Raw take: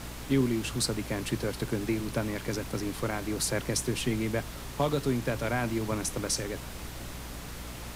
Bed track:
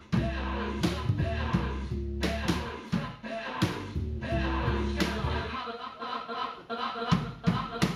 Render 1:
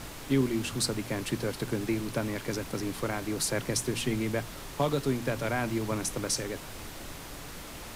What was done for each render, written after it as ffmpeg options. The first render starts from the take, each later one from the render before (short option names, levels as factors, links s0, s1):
-af "bandreject=f=60:t=h:w=4,bandreject=f=120:t=h:w=4,bandreject=f=180:t=h:w=4,bandreject=f=240:t=h:w=4"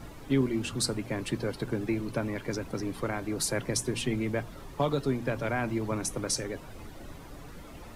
-af "afftdn=nr=12:nf=-43"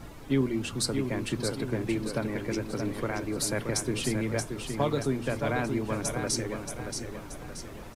-af "aecho=1:1:628|1256|1884|2512|3140:0.473|0.213|0.0958|0.0431|0.0194"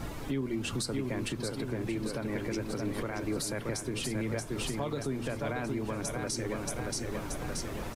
-filter_complex "[0:a]asplit=2[s0][s1];[s1]acompressor=threshold=0.0158:ratio=6,volume=1[s2];[s0][s2]amix=inputs=2:normalize=0,alimiter=limit=0.0631:level=0:latency=1:release=259"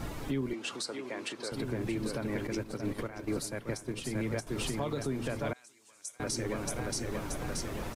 -filter_complex "[0:a]asettb=1/sr,asplit=3[s0][s1][s2];[s0]atrim=end=0.534[s3];[s1]atrim=start=0.53:end=1.52,asetpts=PTS-STARTPTS,afade=t=in:d=0.004:c=qsin,afade=t=out:st=0.986:d=0.004:c=qsin,highpass=430,lowpass=8000[s4];[s2]atrim=start=1.516[s5];[s3][s4]acrossfade=d=0.004:c1=hsin:c2=qsin[s6];[s6][s5]acrossfade=d=0.004:c1=qsin:c2=hsin,asettb=1/sr,asplit=3[s7][s8][s9];[s7]atrim=end=2.474[s10];[s8]atrim=start=2.47:end=4.47,asetpts=PTS-STARTPTS,afade=t=in:d=0.004:c=qsin,afade=t=out:st=1.996:d=0.004:c=qsin,agate=range=0.355:threshold=0.0178:ratio=16:release=100:detection=peak[s11];[s9]atrim=start=4.466[s12];[s10][s11]acrossfade=d=0.004:c1=hsin:c2=qsin[s13];[s13][s12]acrossfade=d=0.004:c1=qsin:c2=hsin,asettb=1/sr,asplit=3[s14][s15][s16];[s14]atrim=end=5.534[s17];[s15]atrim=start=5.53:end=6.2,asetpts=PTS-STARTPTS,afade=t=in:d=0.004:c=qsin,afade=t=out:st=0.666:d=0.004:c=qsin,bandpass=f=7600:t=q:w=2.2[s18];[s16]atrim=start=6.196[s19];[s17][s18]acrossfade=d=0.004:c1=hsin:c2=qsin[s20];[s20][s19]acrossfade=d=0.004:c1=qsin:c2=hsin"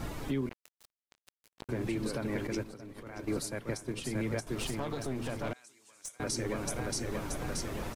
-filter_complex "[0:a]asettb=1/sr,asplit=3[s0][s1][s2];[s0]atrim=end=0.494[s3];[s1]atrim=start=0.49:end=1.69,asetpts=PTS-STARTPTS,afade=t=in:d=0.004:c=qsin,afade=t=out:st=1.196:d=0.004:c=qsin,acrusher=bits=3:mix=0:aa=0.5[s4];[s2]atrim=start=1.686[s5];[s3][s4]acrossfade=d=0.004:c1=hsin:c2=qsin[s6];[s6][s5]acrossfade=d=0.004:c1=qsin:c2=hsin,asettb=1/sr,asplit=3[s7][s8][s9];[s7]atrim=end=2.654[s10];[s8]atrim=start=2.65:end=3.07,asetpts=PTS-STARTPTS,afade=t=in:d=0.004:c=qsin,afade=t=out:st=0.416:d=0.004:c=qsin,acompressor=threshold=0.00794:ratio=16:attack=3.2:release=140:knee=1:detection=peak[s11];[s9]atrim=start=3.066[s12];[s10][s11]acrossfade=d=0.004:c1=hsin:c2=qsin[s13];[s13][s12]acrossfade=d=0.004:c1=qsin:c2=hsin,asettb=1/sr,asplit=3[s14][s15][s16];[s14]atrim=end=4.554[s17];[s15]atrim=start=4.55:end=6.11,asetpts=PTS-STARTPTS,afade=t=in:d=0.004:c=qsin,afade=t=out:st=1.556:d=0.004:c=qsin,aeval=exprs='clip(val(0),-1,0.0126)':c=same[s18];[s16]atrim=start=6.106[s19];[s17][s18]acrossfade=d=0.004:c1=hsin:c2=qsin[s20];[s20][s19]acrossfade=d=0.004:c1=qsin:c2=hsin"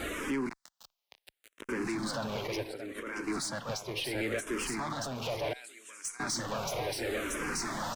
-filter_complex "[0:a]asplit=2[s0][s1];[s1]highpass=f=720:p=1,volume=11.2,asoftclip=type=tanh:threshold=0.0668[s2];[s0][s2]amix=inputs=2:normalize=0,lowpass=f=6000:p=1,volume=0.501,asplit=2[s3][s4];[s4]afreqshift=-0.7[s5];[s3][s5]amix=inputs=2:normalize=1"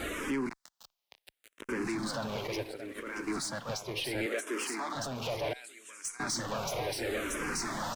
-filter_complex "[0:a]asettb=1/sr,asplit=3[s0][s1][s2];[s0]atrim=end=2.024[s3];[s1]atrim=start=2.02:end=3.73,asetpts=PTS-STARTPTS,afade=t=in:d=0.004:c=qsin,afade=t=out:st=1.706:d=0.004:c=qsin,aeval=exprs='sgn(val(0))*max(abs(val(0))-0.00126,0)':c=same[s4];[s2]atrim=start=3.726[s5];[s3][s4]acrossfade=d=0.004:c1=hsin:c2=qsin[s6];[s6][s5]acrossfade=d=0.004:c1=qsin:c2=hsin,asettb=1/sr,asplit=3[s7][s8][s9];[s7]atrim=end=4.264[s10];[s8]atrim=start=4.26:end=4.95,asetpts=PTS-STARTPTS,afade=t=in:d=0.004:c=qsin,afade=t=out:st=0.686:d=0.004:c=qsin,highpass=f=270:w=0.5412,highpass=f=270:w=1.3066[s11];[s9]atrim=start=4.946[s12];[s10][s11]acrossfade=d=0.004:c1=hsin:c2=qsin[s13];[s13][s12]acrossfade=d=0.004:c1=qsin:c2=hsin"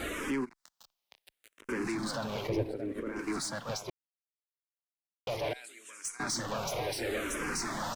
-filter_complex "[0:a]asplit=3[s0][s1][s2];[s0]afade=t=out:st=0.44:d=0.02[s3];[s1]acompressor=threshold=0.00316:ratio=20:attack=3.2:release=140:knee=1:detection=peak,afade=t=in:st=0.44:d=0.02,afade=t=out:st=1.63:d=0.02[s4];[s2]afade=t=in:st=1.63:d=0.02[s5];[s3][s4][s5]amix=inputs=3:normalize=0,asettb=1/sr,asplit=3[s6][s7][s8];[s6]atrim=end=2.494[s9];[s7]atrim=start=2.49:end=3.19,asetpts=PTS-STARTPTS,afade=t=in:d=0.004:c=qsin,afade=t=out:st=0.696:d=0.004:c=qsin,tiltshelf=f=830:g=9.5[s10];[s8]atrim=start=3.186[s11];[s9][s10]acrossfade=d=0.004:c1=hsin:c2=qsin[s12];[s12][s11]acrossfade=d=0.004:c1=qsin:c2=hsin,asplit=3[s13][s14][s15];[s13]atrim=end=3.9,asetpts=PTS-STARTPTS,afade=t=out:st=3.896:d=0.004:c=hsin[s16];[s14]atrim=start=3.9:end=5.27,asetpts=PTS-STARTPTS,volume=0[s17];[s15]atrim=start=5.27,asetpts=PTS-STARTPTS,afade=t=in:d=0.004:c=hsin[s18];[s16][s17][s18]concat=n=3:v=0:a=1"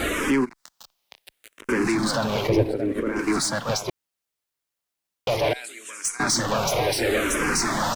-af "volume=3.76"